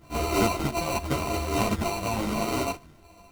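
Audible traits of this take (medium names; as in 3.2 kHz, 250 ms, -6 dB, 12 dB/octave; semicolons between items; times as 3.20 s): a buzz of ramps at a fixed pitch in blocks of 64 samples; phasing stages 8, 0.87 Hz, lowest notch 310–3200 Hz; aliases and images of a low sample rate 1.7 kHz, jitter 0%; a shimmering, thickened sound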